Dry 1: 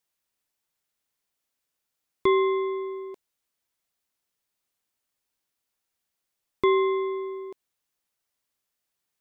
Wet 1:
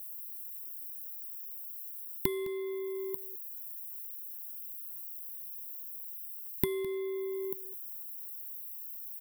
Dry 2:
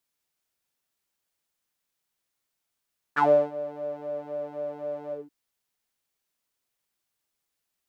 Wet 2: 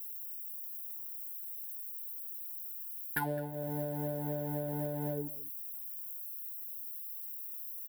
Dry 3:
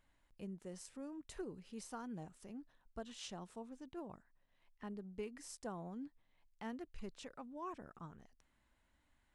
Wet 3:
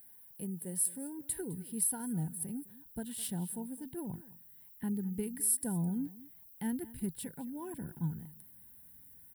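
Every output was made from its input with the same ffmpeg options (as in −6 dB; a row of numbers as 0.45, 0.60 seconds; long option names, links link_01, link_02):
-filter_complex "[0:a]highpass=110,asplit=2[link_01][link_02];[link_02]adynamicsmooth=sensitivity=8:basefreq=3700,volume=-1.5dB[link_03];[link_01][link_03]amix=inputs=2:normalize=0,equalizer=frequency=160:width_type=o:width=0.33:gain=6,equalizer=frequency=630:width_type=o:width=0.33:gain=-8,equalizer=frequency=2500:width_type=o:width=0.33:gain=-8,equalizer=frequency=6300:width_type=o:width=0.33:gain=-6,acompressor=threshold=-33dB:ratio=6,aexciter=amount=14.5:drive=8.8:freq=9600,asubboost=boost=4.5:cutoff=230,crystalizer=i=1.5:c=0,asuperstop=centerf=1200:order=12:qfactor=3.1,aecho=1:1:210:0.119"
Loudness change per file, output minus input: −12.0, −9.5, +13.0 LU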